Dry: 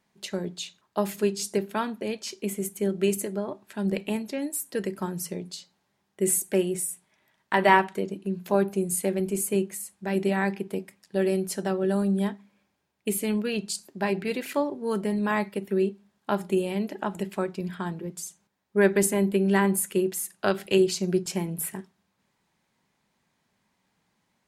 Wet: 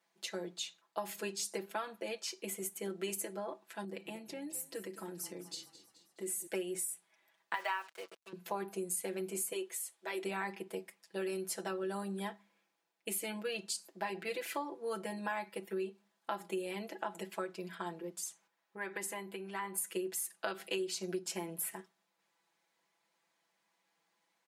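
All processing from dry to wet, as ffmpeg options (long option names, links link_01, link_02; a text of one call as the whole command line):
ffmpeg -i in.wav -filter_complex "[0:a]asettb=1/sr,asplit=3[link_01][link_02][link_03];[link_01]atrim=end=3.844[link_04];[link_02]atrim=start=3.84:end=6.47,asetpts=PTS-STARTPTS,afade=type=in:duration=0.004:curve=qsin,afade=type=out:start_time=2.626:duration=0.004:curve=qsin,equalizer=frequency=260:width_type=o:width=0.8:gain=10,acompressor=threshold=-35dB:ratio=2:attack=3.2:release=140:knee=1:detection=peak,asplit=6[link_05][link_06][link_07][link_08][link_09][link_10];[link_06]adelay=214,afreqshift=-32,volume=-15dB[link_11];[link_07]adelay=428,afreqshift=-64,volume=-20dB[link_12];[link_08]adelay=642,afreqshift=-96,volume=-25.1dB[link_13];[link_09]adelay=856,afreqshift=-128,volume=-30.1dB[link_14];[link_10]adelay=1070,afreqshift=-160,volume=-35.1dB[link_15];[link_05][link_11][link_12][link_13][link_14][link_15]amix=inputs=6:normalize=0,atrim=end_sample=115983[link_16];[link_03]atrim=start=6.466[link_17];[link_04][link_16]acrossfade=duration=0.004:curve1=hsin:curve2=qsin[link_18];[link_18][link_17]acrossfade=duration=0.004:curve1=qsin:curve2=hsin,asettb=1/sr,asplit=3[link_19][link_20][link_21];[link_19]atrim=end=7.544[link_22];[link_20]atrim=start=7.54:end=8.33,asetpts=PTS-STARTPTS,afade=type=in:duration=0.004:curve=qsin,afade=type=out:start_time=0.786:duration=0.004:curve=qsin,highpass=760,lowpass=7500,acrusher=bits=6:mix=0:aa=0.5[link_23];[link_21]atrim=start=8.326[link_24];[link_22][link_23]acrossfade=duration=0.004:curve1=hsin:curve2=qsin[link_25];[link_25][link_24]acrossfade=duration=0.004:curve1=qsin:curve2=hsin,asettb=1/sr,asplit=3[link_26][link_27][link_28];[link_26]atrim=end=9.524[link_29];[link_27]atrim=start=9.52:end=10.24,asetpts=PTS-STARTPTS,afade=type=in:duration=0.004:curve=qsin,afade=type=out:start_time=0.716:duration=0.004:curve=qsin,highpass=frequency=320:width=0.5412,highpass=frequency=320:width=1.3066,equalizer=frequency=3400:width=4.1:gain=6.5,bandreject=frequency=790:width=23[link_30];[link_28]atrim=start=10.236[link_31];[link_29][link_30]acrossfade=duration=0.004:curve1=hsin:curve2=qsin[link_32];[link_32][link_31]acrossfade=duration=0.004:curve1=qsin:curve2=hsin,asettb=1/sr,asplit=3[link_33][link_34][link_35];[link_33]atrim=end=18.254[link_36];[link_34]atrim=start=18.25:end=19.78,asetpts=PTS-STARTPTS,afade=type=in:duration=0.004:curve=qsin,afade=type=out:start_time=1.526:duration=0.004:curve=qsin,acompressor=threshold=-35dB:ratio=2.5:attack=3.2:release=140:knee=1:detection=peak,equalizer=frequency=1500:width_type=o:width=2.4:gain=5.5[link_37];[link_35]atrim=start=19.776[link_38];[link_36][link_37]acrossfade=duration=0.004:curve1=hsin:curve2=qsin[link_39];[link_39][link_38]acrossfade=duration=0.004:curve1=qsin:curve2=hsin,highpass=420,aecho=1:1:6:0.86,acompressor=threshold=-27dB:ratio=6,volume=-6.5dB" out.wav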